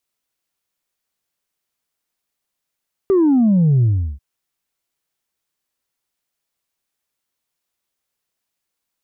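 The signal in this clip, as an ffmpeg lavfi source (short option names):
-f lavfi -i "aevalsrc='0.282*clip((1.09-t)/0.36,0,1)*tanh(1.12*sin(2*PI*400*1.09/log(65/400)*(exp(log(65/400)*t/1.09)-1)))/tanh(1.12)':d=1.09:s=44100"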